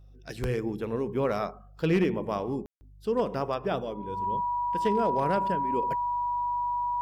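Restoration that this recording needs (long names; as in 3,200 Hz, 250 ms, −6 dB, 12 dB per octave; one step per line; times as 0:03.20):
clipped peaks rebuilt −17.5 dBFS
hum removal 49.7 Hz, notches 3
notch filter 970 Hz, Q 30
ambience match 0:02.66–0:02.81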